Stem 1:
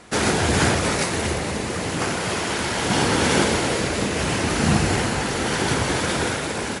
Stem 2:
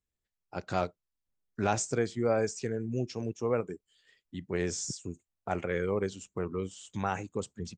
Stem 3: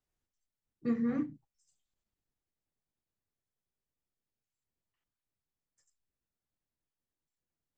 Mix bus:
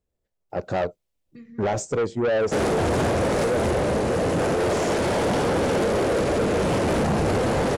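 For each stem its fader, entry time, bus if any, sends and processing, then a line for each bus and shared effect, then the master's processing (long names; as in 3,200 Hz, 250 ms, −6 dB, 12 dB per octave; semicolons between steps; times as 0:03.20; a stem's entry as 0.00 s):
−3.0 dB, 2.40 s, bus A, no send, no processing
0.0 dB, 0.00 s, bus A, no send, no processing
0.0 dB, 0.50 s, no bus, no send, high shelf with overshoot 1,600 Hz +13 dB, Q 1.5; downward compressor 2.5 to 1, threshold −45 dBFS, peak gain reduction 12.5 dB; automatic ducking −13 dB, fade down 1.95 s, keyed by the second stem
bus A: 0.0 dB, parametric band 560 Hz +14 dB 1.3 octaves; brickwall limiter −11 dBFS, peak gain reduction 8.5 dB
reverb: not used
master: low-shelf EQ 390 Hz +10 dB; soft clipping −19 dBFS, distortion −9 dB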